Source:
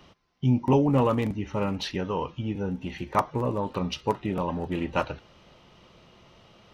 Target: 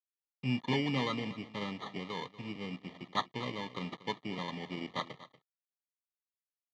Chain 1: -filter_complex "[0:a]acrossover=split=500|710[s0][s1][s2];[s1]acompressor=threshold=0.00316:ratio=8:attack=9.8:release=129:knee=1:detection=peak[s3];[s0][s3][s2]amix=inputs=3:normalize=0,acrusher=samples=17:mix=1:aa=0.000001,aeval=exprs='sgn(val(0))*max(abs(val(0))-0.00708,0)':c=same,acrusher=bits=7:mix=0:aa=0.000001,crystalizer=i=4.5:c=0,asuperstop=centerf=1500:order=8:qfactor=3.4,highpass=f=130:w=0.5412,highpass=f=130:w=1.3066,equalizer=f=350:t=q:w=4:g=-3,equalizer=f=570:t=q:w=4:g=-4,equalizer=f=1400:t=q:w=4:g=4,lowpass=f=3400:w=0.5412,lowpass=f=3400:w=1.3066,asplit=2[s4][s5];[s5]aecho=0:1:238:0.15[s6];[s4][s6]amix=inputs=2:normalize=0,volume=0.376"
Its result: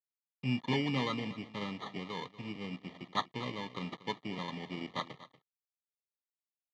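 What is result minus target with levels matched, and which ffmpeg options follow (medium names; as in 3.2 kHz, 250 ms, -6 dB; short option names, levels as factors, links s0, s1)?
compression: peak gain reduction +7.5 dB
-filter_complex "[0:a]acrossover=split=500|710[s0][s1][s2];[s1]acompressor=threshold=0.00841:ratio=8:attack=9.8:release=129:knee=1:detection=peak[s3];[s0][s3][s2]amix=inputs=3:normalize=0,acrusher=samples=17:mix=1:aa=0.000001,aeval=exprs='sgn(val(0))*max(abs(val(0))-0.00708,0)':c=same,acrusher=bits=7:mix=0:aa=0.000001,crystalizer=i=4.5:c=0,asuperstop=centerf=1500:order=8:qfactor=3.4,highpass=f=130:w=0.5412,highpass=f=130:w=1.3066,equalizer=f=350:t=q:w=4:g=-3,equalizer=f=570:t=q:w=4:g=-4,equalizer=f=1400:t=q:w=4:g=4,lowpass=f=3400:w=0.5412,lowpass=f=3400:w=1.3066,asplit=2[s4][s5];[s5]aecho=0:1:238:0.15[s6];[s4][s6]amix=inputs=2:normalize=0,volume=0.376"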